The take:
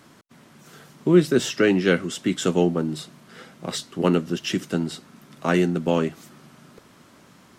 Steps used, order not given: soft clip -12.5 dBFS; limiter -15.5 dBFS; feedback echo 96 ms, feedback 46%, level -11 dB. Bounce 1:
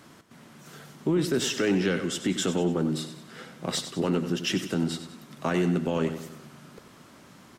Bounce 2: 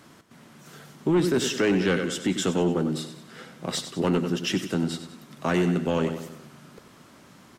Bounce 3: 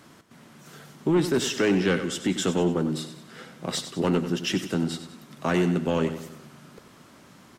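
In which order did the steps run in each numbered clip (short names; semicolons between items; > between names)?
limiter > feedback echo > soft clip; feedback echo > soft clip > limiter; soft clip > limiter > feedback echo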